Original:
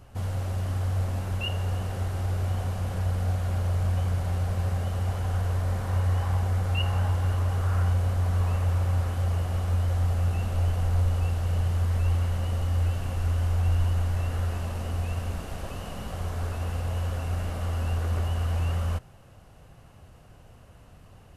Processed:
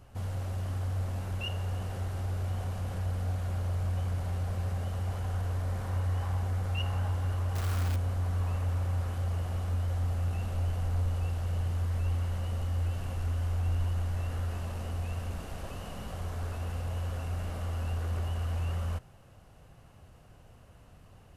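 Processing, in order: in parallel at -5.5 dB: soft clip -29 dBFS, distortion -10 dB; 7.55–7.96 on the sum: companded quantiser 4-bit; gain -7.5 dB

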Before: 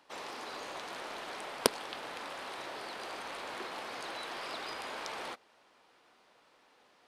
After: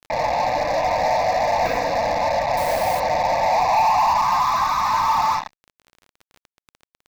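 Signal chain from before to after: FDN reverb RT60 0.9 s, low-frequency decay 1.05×, high-frequency decay 0.9×, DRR 1.5 dB; band-pass sweep 580 Hz -> 1200 Hz, 3.24–4.47; 4.65–5.05 doubler 40 ms -13 dB; loudest bins only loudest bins 16; fuzz box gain 56 dB, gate -54 dBFS; fixed phaser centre 2100 Hz, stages 8; crackle 20/s -29 dBFS; high shelf 5200 Hz -9 dB; 2.57–3 requantised 6-bit, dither triangular

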